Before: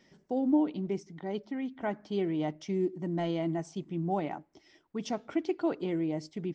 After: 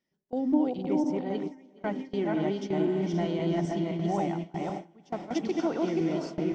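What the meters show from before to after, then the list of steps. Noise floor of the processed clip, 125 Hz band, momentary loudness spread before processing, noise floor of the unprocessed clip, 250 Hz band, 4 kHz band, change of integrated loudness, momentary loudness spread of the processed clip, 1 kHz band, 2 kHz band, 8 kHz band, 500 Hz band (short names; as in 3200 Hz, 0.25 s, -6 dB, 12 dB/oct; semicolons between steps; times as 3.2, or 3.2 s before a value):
-61 dBFS, +4.0 dB, 10 LU, -67 dBFS, +3.0 dB, +3.0 dB, +3.0 dB, 9 LU, +3.5 dB, +3.0 dB, n/a, +3.5 dB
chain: regenerating reverse delay 0.261 s, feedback 42%, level -1 dB; diffused feedback echo 0.541 s, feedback 47%, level -7 dB; gate with hold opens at -22 dBFS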